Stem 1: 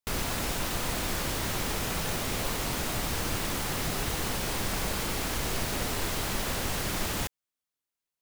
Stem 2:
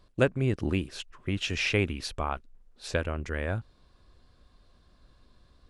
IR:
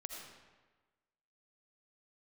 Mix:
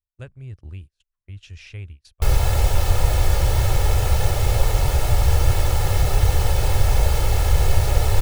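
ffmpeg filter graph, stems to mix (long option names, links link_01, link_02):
-filter_complex "[0:a]equalizer=frequency=630:width=2.6:gain=14.5,aecho=1:1:2.3:0.72,adelay=2150,volume=0.5dB[link_01];[1:a]highshelf=frequency=2800:gain=6.5,volume=-19dB[link_02];[link_01][link_02]amix=inputs=2:normalize=0,agate=range=-27dB:threshold=-50dB:ratio=16:detection=peak,lowshelf=frequency=150:width_type=q:width=1.5:gain=14"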